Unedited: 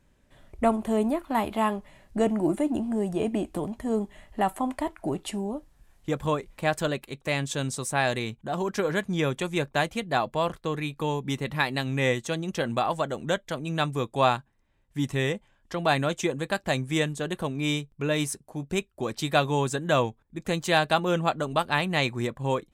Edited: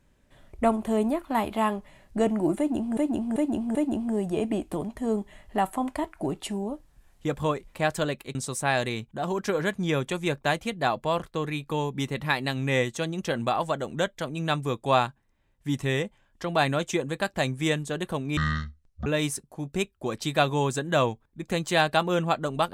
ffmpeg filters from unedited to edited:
ffmpeg -i in.wav -filter_complex "[0:a]asplit=7[link_01][link_02][link_03][link_04][link_05][link_06][link_07];[link_01]atrim=end=2.972[link_08];[link_02]atrim=start=2.578:end=2.972[link_09];[link_03]atrim=start=2.578:end=2.972[link_10];[link_04]atrim=start=2.578:end=7.182[link_11];[link_05]atrim=start=7.648:end=17.674[link_12];[link_06]atrim=start=17.67:end=18.03,asetpts=PTS-STARTPTS,asetrate=22932,aresample=44100[link_13];[link_07]atrim=start=18.026[link_14];[link_08][link_09]acrossfade=duration=0.004:curve1=hsin:curve2=hsin[link_15];[link_15][link_10]acrossfade=duration=0.004:curve1=hsin:curve2=hsin[link_16];[link_16][link_11]acrossfade=duration=0.004:curve1=hsin:curve2=hsin[link_17];[link_17][link_12]acrossfade=duration=0.004:curve1=hsin:curve2=hsin[link_18];[link_18][link_13]acrossfade=duration=0.004:curve1=hsin:curve2=hsin[link_19];[link_19][link_14]acrossfade=duration=0.004:curve1=hsin:curve2=hsin" out.wav

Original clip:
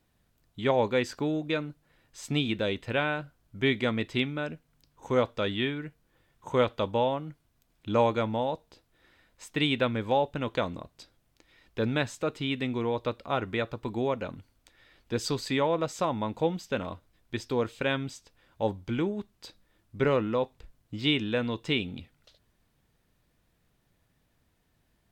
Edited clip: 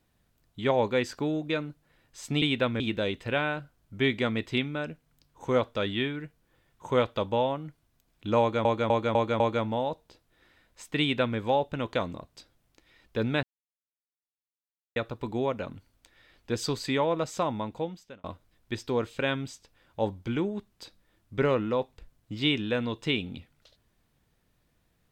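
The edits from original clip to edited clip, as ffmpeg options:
ffmpeg -i in.wav -filter_complex "[0:a]asplit=10[link_01][link_02][link_03][link_04][link_05][link_06][link_07][link_08][link_09][link_10];[link_01]atrim=end=2.422[link_11];[link_02]atrim=start=9.618:end=10.002[link_12];[link_03]atrim=start=2.418:end=8.272[link_13];[link_04]atrim=start=8.018:end=8.272[link_14];[link_05]atrim=start=8.018:end=8.272[link_15];[link_06]atrim=start=8.018:end=8.272[link_16];[link_07]atrim=start=8.018:end=12.05,asetpts=PTS-STARTPTS,afade=type=out:start_time=4.028:duration=0.004:curve=hsin[link_17];[link_08]atrim=start=12.05:end=13.58,asetpts=PTS-STARTPTS,volume=0[link_18];[link_09]atrim=start=13.58:end=16.86,asetpts=PTS-STARTPTS,afade=type=in:duration=0.004:curve=hsin,afade=type=out:start_time=2.51:duration=0.77[link_19];[link_10]atrim=start=16.86,asetpts=PTS-STARTPTS,afade=type=in:duration=0.004:curve=hsin[link_20];[link_11][link_12]acrossfade=duration=0.004:curve1=hsin:curve2=hsin[link_21];[link_21][link_13]acrossfade=duration=0.004:curve1=hsin:curve2=hsin[link_22];[link_22][link_14]acrossfade=duration=0.004:curve1=hsin:curve2=hsin[link_23];[link_23][link_15]acrossfade=duration=0.004:curve1=hsin:curve2=hsin[link_24];[link_24][link_16]acrossfade=duration=0.004:curve1=hsin:curve2=hsin[link_25];[link_17][link_18][link_19][link_20]concat=n=4:v=0:a=1[link_26];[link_25][link_26]acrossfade=duration=0.004:curve1=hsin:curve2=hsin" out.wav

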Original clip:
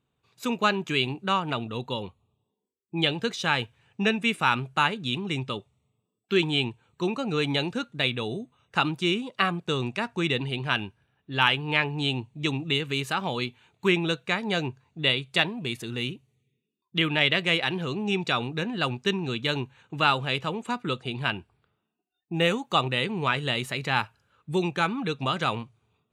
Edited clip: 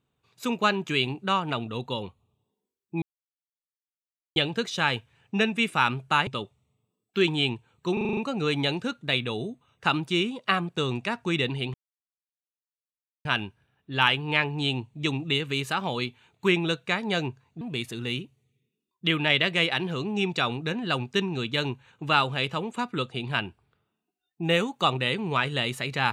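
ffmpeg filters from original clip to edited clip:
ffmpeg -i in.wav -filter_complex "[0:a]asplit=11[link_01][link_02][link_03][link_04][link_05][link_06][link_07][link_08][link_09][link_10][link_11];[link_01]atrim=end=3.02,asetpts=PTS-STARTPTS,afade=type=out:start_time=3.016:duration=0.004:curve=hsin,apad=pad_dur=1.34[link_12];[link_02]atrim=start=3.02:end=4.932,asetpts=PTS-STARTPTS,afade=type=in:duration=0.004:curve=hsin[link_13];[link_03]atrim=start=5.418:end=7.122[link_14];[link_04]atrim=start=7.078:end=7.122[link_15];[link_05]atrim=start=7.078:end=7.122[link_16];[link_06]atrim=start=7.078:end=7.122[link_17];[link_07]atrim=start=7.078:end=7.122[link_18];[link_08]atrim=start=7.078:end=7.122[link_19];[link_09]atrim=start=7.078:end=10.65,asetpts=PTS-STARTPTS,afade=type=out:start_time=3.568:duration=0.004:curve=hsin,apad=pad_dur=1.51[link_20];[link_10]atrim=start=10.65:end=15.012,asetpts=PTS-STARTPTS,afade=type=in:duration=0.004:curve=hsin[link_21];[link_11]atrim=start=15.518[link_22];[link_12][link_13]concat=n=2:v=0:a=1[link_23];[link_23][link_14]acrossfade=duration=0.004:curve1=hsin:curve2=hsin[link_24];[link_24][link_15]acrossfade=duration=0.004:curve1=hsin:curve2=hsin[link_25];[link_25][link_16]acrossfade=duration=0.004:curve1=hsin:curve2=hsin[link_26];[link_26][link_17]acrossfade=duration=0.004:curve1=hsin:curve2=hsin[link_27];[link_27][link_18]acrossfade=duration=0.004:curve1=hsin:curve2=hsin[link_28];[link_28][link_19]acrossfade=duration=0.004:curve1=hsin:curve2=hsin[link_29];[link_20][link_21]concat=n=2:v=0:a=1[link_30];[link_29][link_30]acrossfade=duration=0.004:curve1=hsin:curve2=hsin[link_31];[link_31][link_22]acrossfade=duration=0.004:curve1=hsin:curve2=hsin" out.wav

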